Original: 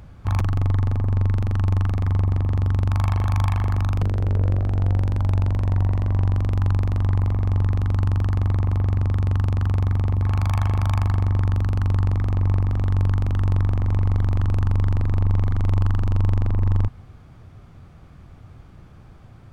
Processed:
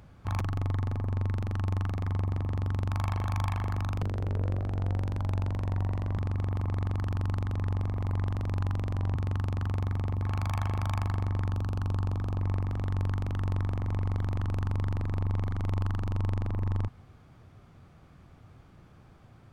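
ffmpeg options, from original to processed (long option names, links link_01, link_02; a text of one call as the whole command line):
ffmpeg -i in.wav -filter_complex "[0:a]asettb=1/sr,asplit=3[link_01][link_02][link_03];[link_01]atrim=end=11.514[link_04];[link_02]atrim=start=11.51:end=12.41,asetpts=PTS-STARTPTS,afade=type=in:duration=0.004:curve=qsin,afade=type=out:start_time=0.896:duration=0.004:curve=qsin,equalizer=frequency=2000:width=4.5:gain=-10.5[link_05];[link_03]atrim=start=12.406[link_06];[link_04][link_05]acrossfade=duration=0.004:curve1=hsin:curve2=qsin[link_07];[link_07][link_06]acrossfade=duration=0.004:curve1=qsin:curve2=hsin,asplit=3[link_08][link_09][link_10];[link_08]atrim=end=6.182[link_11];[link_09]atrim=start=6.178:end=9.152,asetpts=PTS-STARTPTS,areverse[link_12];[link_10]atrim=start=9.148[link_13];[link_11][link_12]acrossfade=duration=0.004:curve1=hsin:curve2=hsin[link_14];[link_14][link_13]acrossfade=duration=0.004:curve1=hsin:curve2=hsin,lowshelf=frequency=87:gain=-9,volume=-5.5dB" out.wav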